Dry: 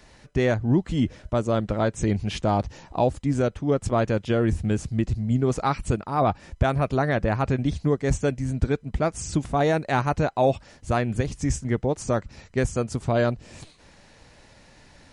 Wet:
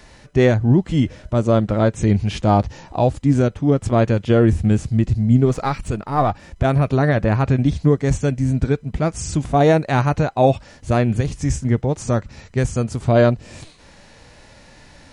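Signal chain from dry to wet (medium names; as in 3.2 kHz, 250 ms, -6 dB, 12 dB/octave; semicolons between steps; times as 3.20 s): 5.45–6.65 s: partial rectifier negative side -3 dB; harmonic-percussive split harmonic +8 dB; trim +1 dB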